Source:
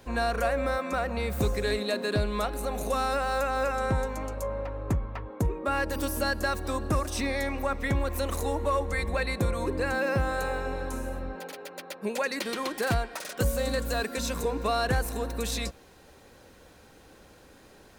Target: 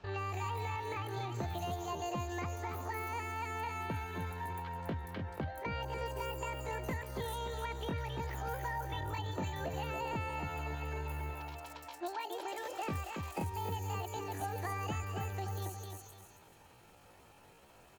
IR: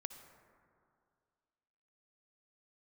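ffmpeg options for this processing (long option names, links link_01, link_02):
-filter_complex "[0:a]asplit=2[link_01][link_02];[link_02]aecho=0:1:276|552|828:0.422|0.114|0.0307[link_03];[link_01][link_03]amix=inputs=2:normalize=0,acrossover=split=540|1100[link_04][link_05][link_06];[link_04]acompressor=threshold=-29dB:ratio=4[link_07];[link_05]acompressor=threshold=-43dB:ratio=4[link_08];[link_06]acompressor=threshold=-41dB:ratio=4[link_09];[link_07][link_08][link_09]amix=inputs=3:normalize=0,asetrate=74167,aresample=44100,atempo=0.594604,acrossover=split=5400[link_10][link_11];[link_11]adelay=180[link_12];[link_10][link_12]amix=inputs=2:normalize=0,volume=-6.5dB"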